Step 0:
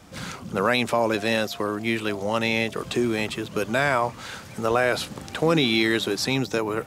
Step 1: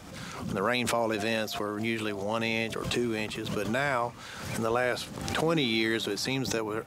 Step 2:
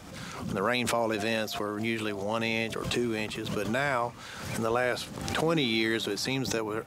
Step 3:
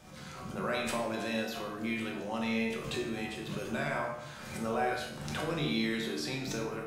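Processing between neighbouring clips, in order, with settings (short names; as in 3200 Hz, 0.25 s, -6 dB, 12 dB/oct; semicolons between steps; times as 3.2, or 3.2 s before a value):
backwards sustainer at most 47 dB/s; gain -6.5 dB
nothing audible
resonator 75 Hz, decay 0.49 s, harmonics all, mix 80%; shoebox room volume 340 m³, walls mixed, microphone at 1 m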